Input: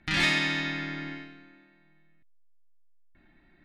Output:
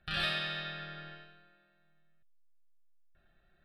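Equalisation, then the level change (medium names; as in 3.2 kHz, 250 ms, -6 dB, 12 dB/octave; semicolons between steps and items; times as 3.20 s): peaking EQ 840 Hz +2.5 dB 2 oct; static phaser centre 1.4 kHz, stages 8; -5.0 dB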